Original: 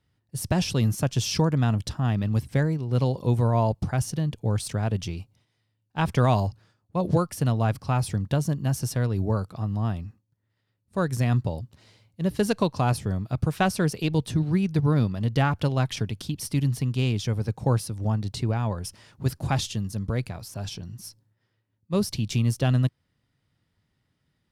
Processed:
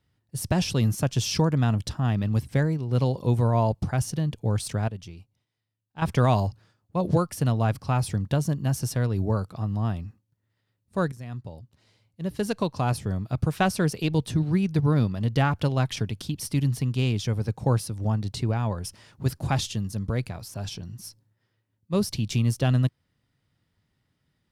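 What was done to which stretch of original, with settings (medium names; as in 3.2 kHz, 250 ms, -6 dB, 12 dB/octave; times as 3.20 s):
4.88–6.02 s: gain -10 dB
11.12–13.36 s: fade in, from -17.5 dB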